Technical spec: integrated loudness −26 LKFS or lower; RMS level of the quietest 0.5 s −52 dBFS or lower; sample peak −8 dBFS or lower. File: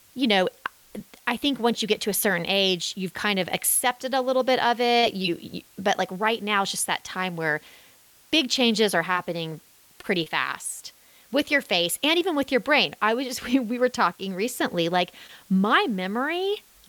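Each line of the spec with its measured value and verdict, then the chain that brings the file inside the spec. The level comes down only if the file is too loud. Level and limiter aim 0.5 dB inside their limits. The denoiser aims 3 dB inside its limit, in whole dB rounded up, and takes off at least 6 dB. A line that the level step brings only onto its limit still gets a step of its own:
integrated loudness −24.0 LKFS: out of spec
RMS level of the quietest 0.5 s −55 dBFS: in spec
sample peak −7.0 dBFS: out of spec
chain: level −2.5 dB

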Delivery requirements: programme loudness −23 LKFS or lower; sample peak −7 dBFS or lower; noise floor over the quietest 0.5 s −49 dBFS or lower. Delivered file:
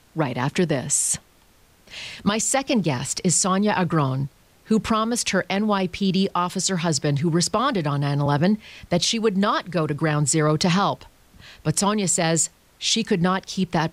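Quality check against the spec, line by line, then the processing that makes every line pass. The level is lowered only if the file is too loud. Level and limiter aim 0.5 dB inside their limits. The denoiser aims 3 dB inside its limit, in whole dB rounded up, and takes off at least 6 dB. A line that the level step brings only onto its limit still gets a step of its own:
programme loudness −22.0 LKFS: out of spec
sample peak −9.0 dBFS: in spec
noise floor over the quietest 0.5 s −56 dBFS: in spec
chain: level −1.5 dB

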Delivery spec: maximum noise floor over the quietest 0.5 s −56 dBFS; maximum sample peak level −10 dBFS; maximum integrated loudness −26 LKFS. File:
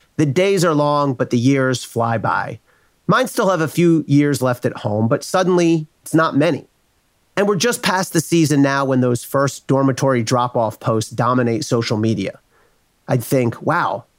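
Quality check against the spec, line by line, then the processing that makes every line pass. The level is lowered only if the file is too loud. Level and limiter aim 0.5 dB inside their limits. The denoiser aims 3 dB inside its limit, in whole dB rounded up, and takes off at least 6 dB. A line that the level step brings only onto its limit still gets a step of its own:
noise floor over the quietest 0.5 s −61 dBFS: in spec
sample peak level −2.5 dBFS: out of spec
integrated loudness −17.5 LKFS: out of spec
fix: level −9 dB

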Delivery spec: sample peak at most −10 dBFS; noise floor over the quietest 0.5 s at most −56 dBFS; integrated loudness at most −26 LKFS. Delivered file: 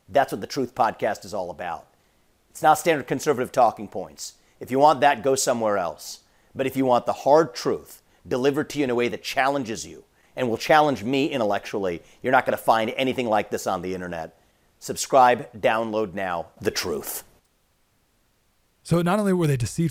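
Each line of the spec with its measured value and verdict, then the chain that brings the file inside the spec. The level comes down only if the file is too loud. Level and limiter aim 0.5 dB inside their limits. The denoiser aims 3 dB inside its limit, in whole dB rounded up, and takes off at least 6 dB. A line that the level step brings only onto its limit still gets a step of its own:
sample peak −4.0 dBFS: out of spec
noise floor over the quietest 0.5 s −66 dBFS: in spec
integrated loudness −23.0 LKFS: out of spec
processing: level −3.5 dB
brickwall limiter −10.5 dBFS

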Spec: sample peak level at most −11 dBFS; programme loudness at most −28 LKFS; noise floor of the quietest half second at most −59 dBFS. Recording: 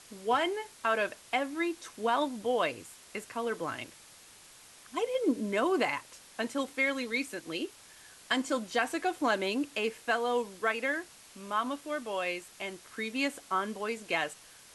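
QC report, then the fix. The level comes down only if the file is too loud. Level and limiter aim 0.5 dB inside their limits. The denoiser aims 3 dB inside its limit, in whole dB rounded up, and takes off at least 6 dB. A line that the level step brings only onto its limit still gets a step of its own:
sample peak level −13.0 dBFS: in spec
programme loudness −32.5 LKFS: in spec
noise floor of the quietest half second −55 dBFS: out of spec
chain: broadband denoise 7 dB, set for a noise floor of −55 dBFS

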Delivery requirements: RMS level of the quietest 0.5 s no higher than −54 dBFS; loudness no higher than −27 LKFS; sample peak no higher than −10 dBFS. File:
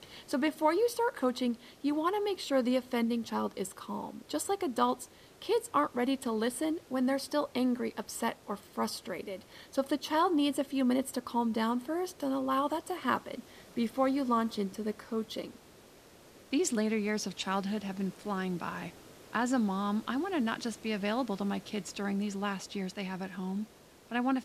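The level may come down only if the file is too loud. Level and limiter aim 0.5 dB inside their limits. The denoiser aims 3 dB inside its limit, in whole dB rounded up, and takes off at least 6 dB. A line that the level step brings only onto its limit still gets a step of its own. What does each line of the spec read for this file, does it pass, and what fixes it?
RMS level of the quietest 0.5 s −56 dBFS: in spec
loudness −33.0 LKFS: in spec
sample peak −14.5 dBFS: in spec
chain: no processing needed

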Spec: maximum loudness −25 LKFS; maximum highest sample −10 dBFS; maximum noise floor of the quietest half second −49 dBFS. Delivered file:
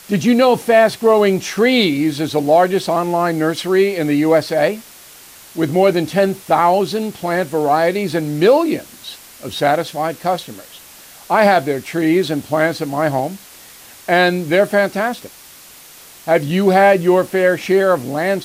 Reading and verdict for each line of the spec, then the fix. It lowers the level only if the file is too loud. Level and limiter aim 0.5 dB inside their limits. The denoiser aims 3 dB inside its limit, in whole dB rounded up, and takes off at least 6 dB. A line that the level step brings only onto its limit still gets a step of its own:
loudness −15.5 LKFS: out of spec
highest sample −2.5 dBFS: out of spec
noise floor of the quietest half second −41 dBFS: out of spec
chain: level −10 dB

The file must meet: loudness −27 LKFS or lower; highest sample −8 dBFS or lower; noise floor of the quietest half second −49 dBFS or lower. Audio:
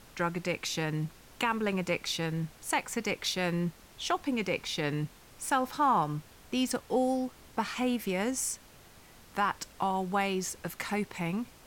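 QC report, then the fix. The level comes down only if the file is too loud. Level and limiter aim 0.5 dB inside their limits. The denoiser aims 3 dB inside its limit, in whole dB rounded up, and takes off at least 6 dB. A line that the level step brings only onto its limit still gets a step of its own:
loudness −32.0 LKFS: in spec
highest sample −16.5 dBFS: in spec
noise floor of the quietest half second −55 dBFS: in spec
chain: no processing needed

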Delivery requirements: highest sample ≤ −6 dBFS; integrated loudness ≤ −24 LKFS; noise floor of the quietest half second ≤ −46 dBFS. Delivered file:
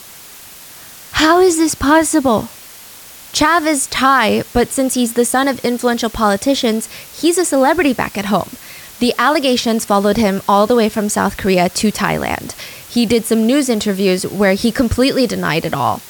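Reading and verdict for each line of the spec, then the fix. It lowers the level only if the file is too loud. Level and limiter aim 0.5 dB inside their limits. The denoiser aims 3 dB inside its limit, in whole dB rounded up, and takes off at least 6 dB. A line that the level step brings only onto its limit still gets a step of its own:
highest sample −2.0 dBFS: out of spec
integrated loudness −14.5 LKFS: out of spec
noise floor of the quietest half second −37 dBFS: out of spec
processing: level −10 dB

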